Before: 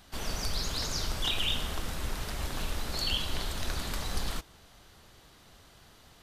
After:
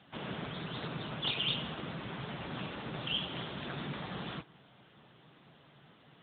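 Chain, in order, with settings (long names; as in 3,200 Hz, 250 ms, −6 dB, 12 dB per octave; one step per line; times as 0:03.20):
low shelf with overshoot 110 Hz −6.5 dB, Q 3
harmonic generator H 2 −14 dB, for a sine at −15.5 dBFS
AMR narrowband 10.2 kbit/s 8,000 Hz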